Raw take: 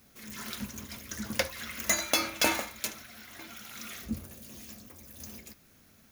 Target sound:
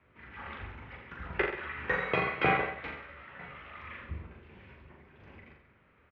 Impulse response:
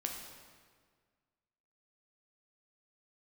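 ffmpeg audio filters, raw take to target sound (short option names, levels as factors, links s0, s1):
-filter_complex "[0:a]asettb=1/sr,asplit=3[s0][s1][s2];[s0]atrim=end=1.334[s3];[s1]atrim=start=1.33:end=3.7,asetpts=PTS-STARTPTS,afade=t=in:d=0.004:c=qsin,afade=t=out:st=2.366:d=0.004:c=qsin,asplit=2[s4][s5];[s5]adelay=14,volume=0.501[s6];[s4][s6]amix=inputs=2:normalize=0,atrim=end_sample=104517[s7];[s2]atrim=start=3.696[s8];[s3][s7]acrossfade=d=0.004:c1=hsin:c2=qsin[s9];[s9][s8]acrossfade=d=0.004:c1=qsin:c2=hsin,aecho=1:1:40|84|132.4|185.6|244.2:0.631|0.398|0.251|0.158|0.1,highpass=f=250:t=q:w=0.5412,highpass=f=250:t=q:w=1.307,lowpass=f=2700:t=q:w=0.5176,lowpass=f=2700:t=q:w=0.7071,lowpass=f=2700:t=q:w=1.932,afreqshift=-150"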